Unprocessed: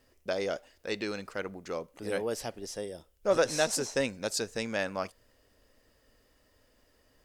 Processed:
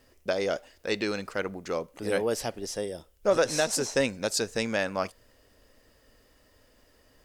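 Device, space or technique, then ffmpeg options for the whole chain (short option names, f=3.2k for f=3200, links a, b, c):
clipper into limiter: -af "asoftclip=type=hard:threshold=-13.5dB,alimiter=limit=-18dB:level=0:latency=1:release=291,volume=5dB"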